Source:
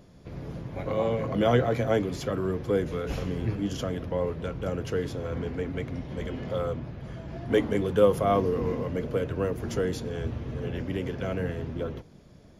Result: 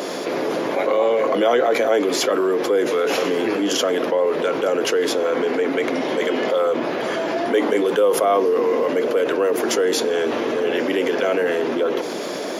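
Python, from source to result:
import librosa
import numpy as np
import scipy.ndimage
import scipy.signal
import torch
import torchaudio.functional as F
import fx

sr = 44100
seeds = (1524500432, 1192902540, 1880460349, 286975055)

y = scipy.signal.sosfilt(scipy.signal.butter(4, 330.0, 'highpass', fs=sr, output='sos'), x)
y = fx.env_flatten(y, sr, amount_pct=70)
y = y * librosa.db_to_amplitude(2.0)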